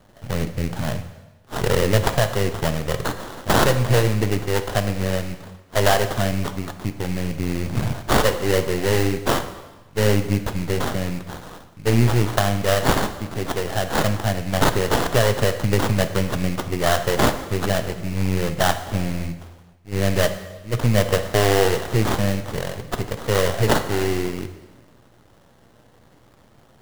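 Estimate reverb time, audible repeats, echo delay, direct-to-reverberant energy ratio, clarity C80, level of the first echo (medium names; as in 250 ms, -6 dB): 1.2 s, no echo, no echo, 8.5 dB, 12.5 dB, no echo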